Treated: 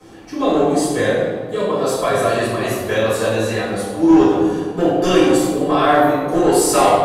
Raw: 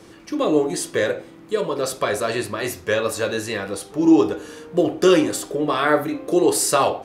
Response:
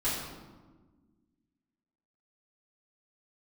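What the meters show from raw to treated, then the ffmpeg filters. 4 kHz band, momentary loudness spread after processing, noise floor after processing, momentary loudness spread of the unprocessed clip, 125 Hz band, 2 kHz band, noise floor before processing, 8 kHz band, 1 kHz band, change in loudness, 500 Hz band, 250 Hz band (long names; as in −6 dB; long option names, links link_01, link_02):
+2.5 dB, 8 LU, −30 dBFS, 10 LU, +7.5 dB, +3.0 dB, −45 dBFS, +1.5 dB, +7.5 dB, +4.5 dB, +4.5 dB, +4.5 dB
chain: -filter_complex "[0:a]equalizer=frequency=730:width=5.3:gain=9.5,acrossover=split=100|1200|3400[link_01][link_02][link_03][link_04];[link_02]asoftclip=type=hard:threshold=-12.5dB[link_05];[link_01][link_05][link_03][link_04]amix=inputs=4:normalize=0[link_06];[1:a]atrim=start_sample=2205,asetrate=36162,aresample=44100[link_07];[link_06][link_07]afir=irnorm=-1:irlink=0,volume=-6dB"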